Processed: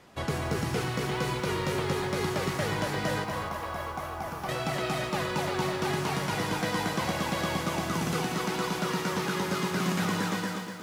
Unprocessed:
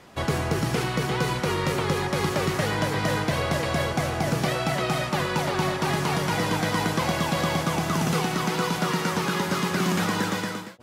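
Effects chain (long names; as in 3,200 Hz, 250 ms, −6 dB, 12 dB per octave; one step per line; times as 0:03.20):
0:03.24–0:04.49: graphic EQ with 10 bands 125 Hz −12 dB, 250 Hz −7 dB, 500 Hz −8 dB, 1,000 Hz +6 dB, 2,000 Hz −7 dB, 4,000 Hz −8 dB, 8,000 Hz −10 dB
feedback echo at a low word length 246 ms, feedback 35%, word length 8 bits, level −6 dB
level −5.5 dB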